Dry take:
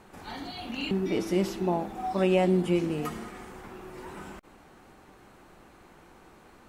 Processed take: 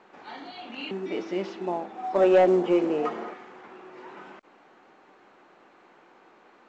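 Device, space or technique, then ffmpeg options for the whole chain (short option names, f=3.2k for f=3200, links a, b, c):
telephone: -filter_complex "[0:a]asettb=1/sr,asplit=3[a][b][c];[a]atrim=end=2.134[d];[b]atrim=start=2.13:end=3.34,asetpts=PTS-STARTPTS,afade=t=in:d=0.004:c=qsin,afade=t=out:st=1.206:d=0.004:c=qsin,equalizer=f=560:w=0.61:g=11[e];[c]atrim=start=3.336[f];[d][e]acrossfade=d=0.004:c1=hsin:c2=qsin[g];[g][f]acrossfade=d=0.004:c1=qsin:c2=hsin,highpass=330,lowpass=3.4k,asoftclip=type=tanh:threshold=-11.5dB" -ar 16000 -c:a pcm_mulaw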